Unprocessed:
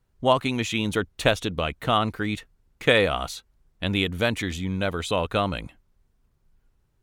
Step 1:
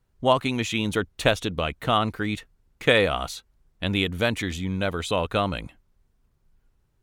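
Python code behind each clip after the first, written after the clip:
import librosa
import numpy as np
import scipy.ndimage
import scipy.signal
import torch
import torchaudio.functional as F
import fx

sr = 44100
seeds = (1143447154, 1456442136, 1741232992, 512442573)

y = x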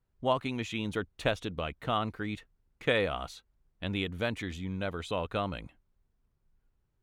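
y = fx.high_shelf(x, sr, hz=5300.0, db=-8.5)
y = y * 10.0 ** (-8.0 / 20.0)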